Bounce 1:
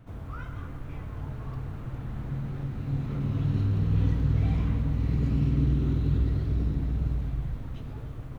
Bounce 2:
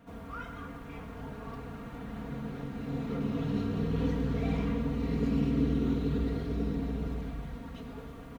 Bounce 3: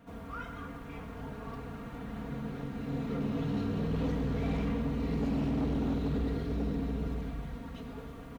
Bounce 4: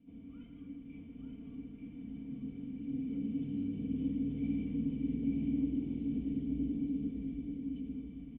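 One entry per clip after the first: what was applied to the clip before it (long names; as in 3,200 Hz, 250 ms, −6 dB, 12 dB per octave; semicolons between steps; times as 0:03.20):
comb filter 4.3 ms, depth 81%; dynamic equaliser 450 Hz, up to +5 dB, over −44 dBFS, Q 1.6; high-pass filter 180 Hz 6 dB per octave
hard clipping −27 dBFS, distortion −13 dB
formant resonators in series i; single-tap delay 885 ms −4.5 dB; on a send at −15.5 dB: convolution reverb RT60 0.55 s, pre-delay 76 ms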